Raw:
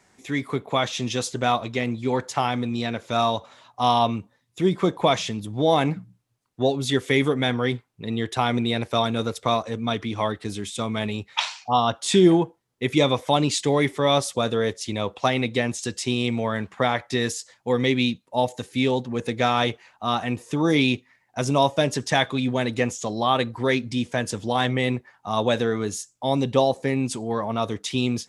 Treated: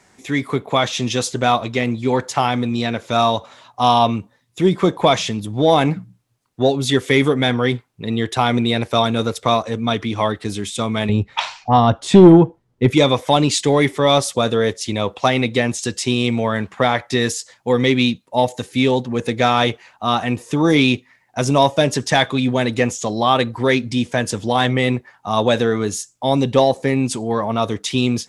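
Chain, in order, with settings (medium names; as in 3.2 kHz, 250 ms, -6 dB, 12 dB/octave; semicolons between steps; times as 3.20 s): 11.09–12.91 s: tilt EQ -3 dB/octave; in parallel at -11 dB: sine folder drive 7 dB, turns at -0.5 dBFS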